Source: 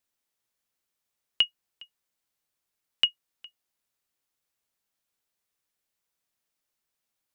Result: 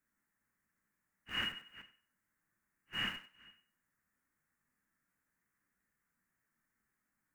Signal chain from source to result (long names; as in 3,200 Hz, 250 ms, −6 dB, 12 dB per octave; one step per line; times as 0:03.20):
random phases in long frames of 200 ms
drawn EQ curve 130 Hz 0 dB, 210 Hz +6 dB, 470 Hz −9 dB, 710 Hz −10 dB, 1,800 Hz +4 dB, 3,400 Hz −28 dB, 7,100 Hz −12 dB
in parallel at −6 dB: comparator with hysteresis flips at −54.5 dBFS
on the sum: feedback echo with a high-pass in the loop 96 ms, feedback 19%, high-pass 200 Hz, level −12.5 dB
0:01.42–0:01.82: multiband upward and downward compressor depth 100%
level +7 dB